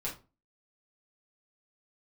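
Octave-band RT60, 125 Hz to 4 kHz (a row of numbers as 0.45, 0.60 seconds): 0.40, 0.40, 0.35, 0.30, 0.25, 0.20 seconds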